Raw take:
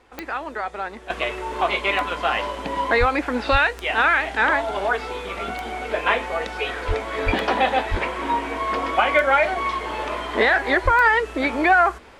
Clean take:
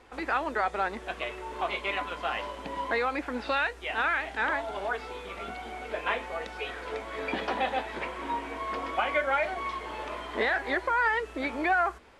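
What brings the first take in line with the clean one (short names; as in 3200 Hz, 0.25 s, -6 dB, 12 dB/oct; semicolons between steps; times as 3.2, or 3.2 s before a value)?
de-click; de-plosive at 2.99/3.51/6.87/7.25/7.9/10.84; gain 0 dB, from 1.1 s -9.5 dB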